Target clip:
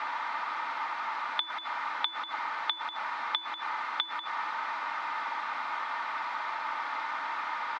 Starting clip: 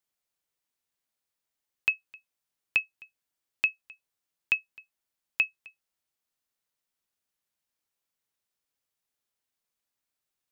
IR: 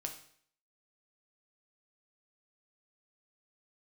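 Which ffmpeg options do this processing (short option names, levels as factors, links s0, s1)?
-af "aeval=exprs='val(0)+0.5*0.0398*sgn(val(0))':c=same,equalizer=f=680:t=o:w=1.5:g=10,aecho=1:1:4.5:0.44,asetrate=59535,aresample=44100,highpass=370,equalizer=f=380:t=q:w=4:g=-9,equalizer=f=580:t=q:w=4:g=-9,equalizer=f=920:t=q:w=4:g=7,equalizer=f=1300:t=q:w=4:g=9,equalizer=f=2000:t=q:w=4:g=5,equalizer=f=2900:t=q:w=4:g=-7,lowpass=f=3300:w=0.5412,lowpass=f=3300:w=1.3066"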